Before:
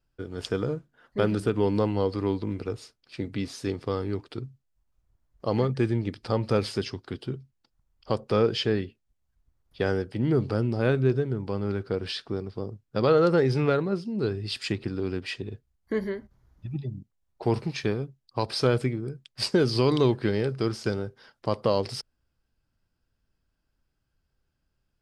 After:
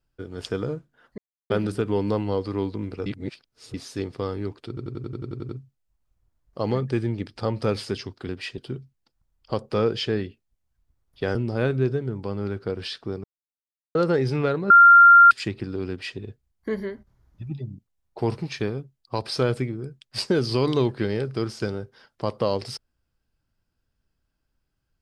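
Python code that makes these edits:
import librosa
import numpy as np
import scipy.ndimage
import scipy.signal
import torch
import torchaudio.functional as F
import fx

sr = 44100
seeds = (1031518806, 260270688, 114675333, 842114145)

y = fx.edit(x, sr, fx.insert_silence(at_s=1.18, length_s=0.32),
    fx.reverse_span(start_s=2.74, length_s=0.68),
    fx.stutter(start_s=4.36, slice_s=0.09, count=10),
    fx.cut(start_s=9.93, length_s=0.66),
    fx.silence(start_s=12.48, length_s=0.71),
    fx.bleep(start_s=13.94, length_s=0.61, hz=1390.0, db=-7.5),
    fx.duplicate(start_s=15.14, length_s=0.29, to_s=7.16), tone=tone)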